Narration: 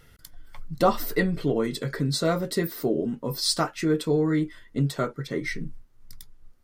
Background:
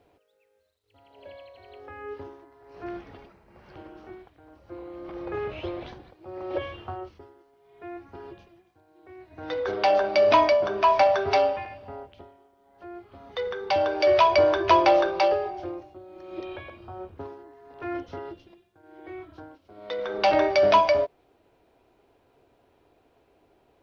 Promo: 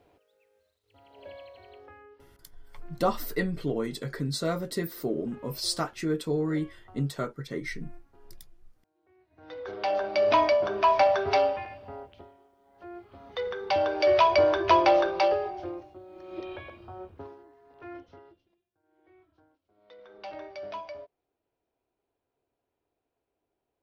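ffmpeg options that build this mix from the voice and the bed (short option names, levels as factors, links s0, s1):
-filter_complex "[0:a]adelay=2200,volume=0.562[s0];[1:a]volume=5.96,afade=t=out:st=1.52:d=0.58:silence=0.133352,afade=t=in:st=9.27:d=1.35:silence=0.16788,afade=t=out:st=16.68:d=1.73:silence=0.11885[s1];[s0][s1]amix=inputs=2:normalize=0"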